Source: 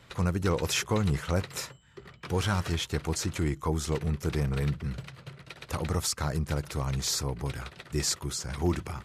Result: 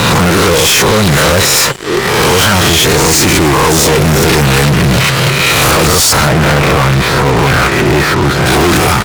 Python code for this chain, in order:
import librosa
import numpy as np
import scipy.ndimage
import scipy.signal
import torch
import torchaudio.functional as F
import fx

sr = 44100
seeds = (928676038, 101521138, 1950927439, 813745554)

y = fx.spec_swells(x, sr, rise_s=0.72)
y = fx.highpass(y, sr, hz=200.0, slope=6)
y = fx.rider(y, sr, range_db=4, speed_s=0.5)
y = fx.lowpass(y, sr, hz=2400.0, slope=24, at=(6.27, 8.46))
y = fx.fuzz(y, sr, gain_db=46.0, gate_db=-52.0)
y = F.gain(torch.from_numpy(y), 6.0).numpy()